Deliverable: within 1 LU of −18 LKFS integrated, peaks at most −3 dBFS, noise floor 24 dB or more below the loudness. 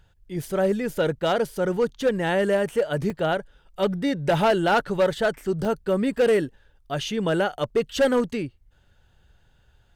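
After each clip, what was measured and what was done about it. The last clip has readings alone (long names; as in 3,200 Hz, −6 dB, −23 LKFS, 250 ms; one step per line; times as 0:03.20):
share of clipped samples 1.1%; peaks flattened at −14.5 dBFS; number of dropouts 2; longest dropout 3.4 ms; integrated loudness −24.0 LKFS; sample peak −14.5 dBFS; target loudness −18.0 LKFS
→ clipped peaks rebuilt −14.5 dBFS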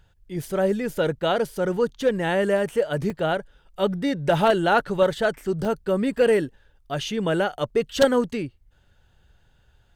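share of clipped samples 0.0%; number of dropouts 2; longest dropout 3.4 ms
→ repair the gap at 0:03.10/0:05.65, 3.4 ms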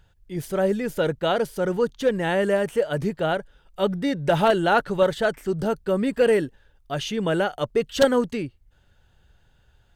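number of dropouts 0; integrated loudness −23.5 LKFS; sample peak −5.5 dBFS; target loudness −18.0 LKFS
→ level +5.5 dB
brickwall limiter −3 dBFS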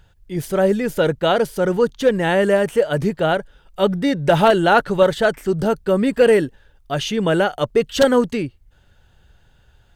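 integrated loudness −18.0 LKFS; sample peak −3.0 dBFS; background noise floor −55 dBFS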